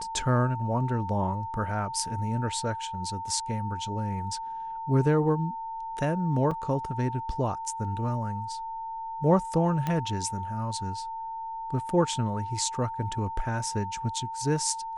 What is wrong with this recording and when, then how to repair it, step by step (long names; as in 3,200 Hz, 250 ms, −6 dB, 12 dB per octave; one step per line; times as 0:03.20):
whistle 900 Hz −33 dBFS
0:06.51: drop-out 4.8 ms
0:09.87: click −16 dBFS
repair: click removal
notch filter 900 Hz, Q 30
repair the gap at 0:06.51, 4.8 ms